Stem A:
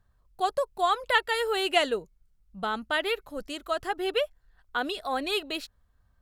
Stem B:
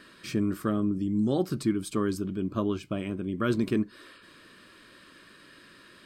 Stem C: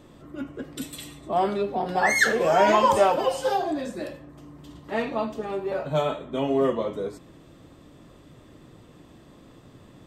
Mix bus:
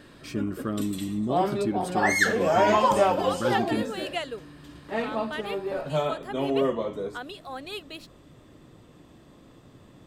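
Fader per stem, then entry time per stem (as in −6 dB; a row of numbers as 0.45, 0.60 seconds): −8.0, −2.5, −2.0 decibels; 2.40, 0.00, 0.00 seconds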